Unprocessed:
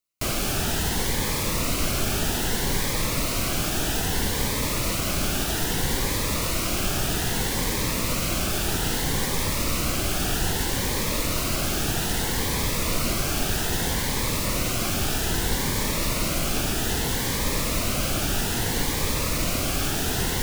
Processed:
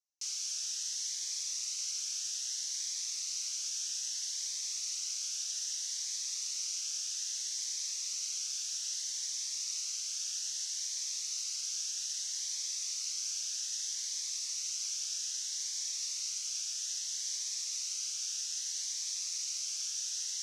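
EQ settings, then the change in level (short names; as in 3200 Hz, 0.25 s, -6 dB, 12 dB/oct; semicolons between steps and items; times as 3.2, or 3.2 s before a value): band-pass 5900 Hz, Q 5; air absorption 90 m; differentiator; +9.0 dB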